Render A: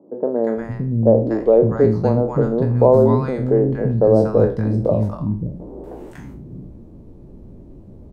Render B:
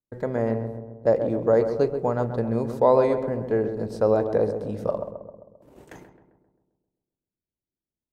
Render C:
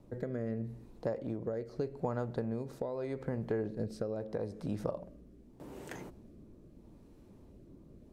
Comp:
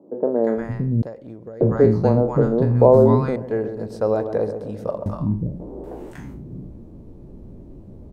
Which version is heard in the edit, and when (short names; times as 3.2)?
A
1.02–1.61 from C
3.36–5.06 from B